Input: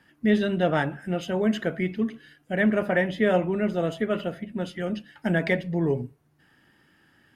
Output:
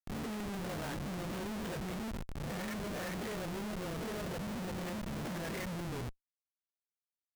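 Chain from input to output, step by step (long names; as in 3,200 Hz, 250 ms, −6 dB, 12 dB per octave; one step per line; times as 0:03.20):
peak hold with a rise ahead of every peak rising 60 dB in 0.62 s
low-pass filter 4,600 Hz 12 dB per octave
low-shelf EQ 74 Hz +7 dB
downward compressor 8 to 1, threshold −29 dBFS, peak gain reduction 14.5 dB
high-shelf EQ 3,200 Hz +7.5 dB
notch filter 580 Hz, Q 12
all-pass dispersion highs, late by 110 ms, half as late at 350 Hz
on a send at −15 dB: convolution reverb RT60 2.1 s, pre-delay 146 ms
on the sum: comparator with hysteresis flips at −35.5 dBFS
level −5.5 dB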